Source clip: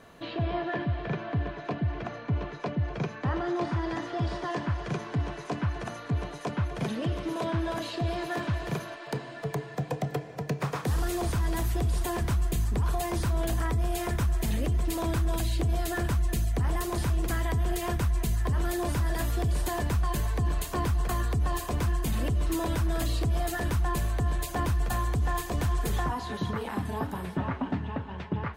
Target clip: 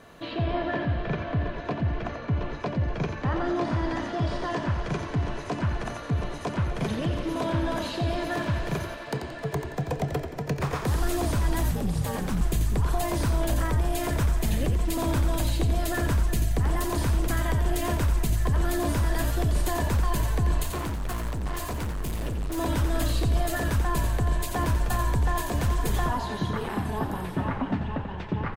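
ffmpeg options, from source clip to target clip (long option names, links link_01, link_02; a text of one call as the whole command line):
ffmpeg -i in.wav -filter_complex "[0:a]asettb=1/sr,asplit=3[link_01][link_02][link_03];[link_01]atrim=end=20.634[link_04];[link_02]atrim=start=20.63:end=22.58,asetpts=PTS-STARTPTS,afade=type=in:duration=0.004:curve=qsin,afade=type=out:start_time=1.946:duration=0.004:curve=qsin,volume=31dB,asoftclip=hard,volume=-31dB[link_05];[link_03]atrim=start=22.576[link_06];[link_04][link_05]acrossfade=duration=0.004:curve1=hsin:curve2=qsin[link_07];[link_07][link_06]acrossfade=duration=0.004:curve1=qsin:curve2=hsin,asplit=6[link_08][link_09][link_10][link_11][link_12][link_13];[link_09]adelay=88,afreqshift=-62,volume=-7dB[link_14];[link_10]adelay=176,afreqshift=-124,volume=-14.5dB[link_15];[link_11]adelay=264,afreqshift=-186,volume=-22.1dB[link_16];[link_12]adelay=352,afreqshift=-248,volume=-29.6dB[link_17];[link_13]adelay=440,afreqshift=-310,volume=-37.1dB[link_18];[link_08][link_14][link_15][link_16][link_17][link_18]amix=inputs=6:normalize=0,asettb=1/sr,asplit=3[link_19][link_20][link_21];[link_19]atrim=end=11.714[link_22];[link_20]atrim=start=11.71:end=12.41,asetpts=PTS-STARTPTS,afade=type=in:duration=0.004:curve=qsin,afade=type=out:start_time=0.696:duration=0.004:curve=qsin,aeval=exprs='val(0)*sin(2*PI*110*n/s)':channel_layout=same[link_23];[link_21]atrim=start=12.406[link_24];[link_22][link_23]acrossfade=duration=0.004:curve1=hsin:curve2=qsin[link_25];[link_25][link_24]acrossfade=duration=0.004:curve1=qsin:curve2=hsin,volume=2dB" out.wav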